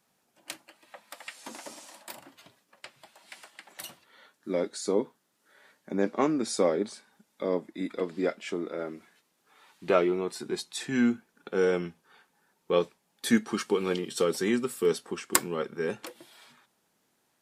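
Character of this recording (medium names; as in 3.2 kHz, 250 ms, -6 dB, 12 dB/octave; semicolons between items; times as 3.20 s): noise floor -74 dBFS; spectral tilt -4.0 dB/octave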